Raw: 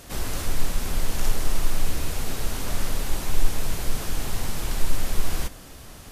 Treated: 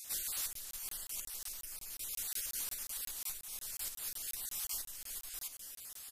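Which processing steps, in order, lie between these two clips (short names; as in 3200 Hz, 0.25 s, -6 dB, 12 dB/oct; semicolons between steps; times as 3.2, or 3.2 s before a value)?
random spectral dropouts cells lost 20%; compressor, threshold -24 dBFS, peak gain reduction 13 dB; pre-emphasis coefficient 0.97; feedback echo 0.238 s, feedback 55%, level -16.5 dB; crackling interface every 0.18 s, samples 1024, zero, from 0.53; gain +1 dB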